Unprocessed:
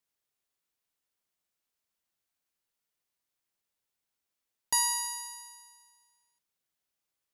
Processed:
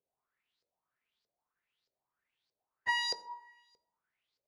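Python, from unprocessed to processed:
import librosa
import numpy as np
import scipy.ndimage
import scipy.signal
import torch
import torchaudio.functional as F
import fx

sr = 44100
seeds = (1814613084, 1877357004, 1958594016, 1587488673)

y = fx.stretch_vocoder_free(x, sr, factor=0.61)
y = fx.filter_lfo_lowpass(y, sr, shape='saw_up', hz=1.6, low_hz=470.0, high_hz=5000.0, q=6.1)
y = fx.rev_fdn(y, sr, rt60_s=0.7, lf_ratio=1.1, hf_ratio=0.55, size_ms=45.0, drr_db=9.5)
y = F.gain(torch.from_numpy(y), 1.5).numpy()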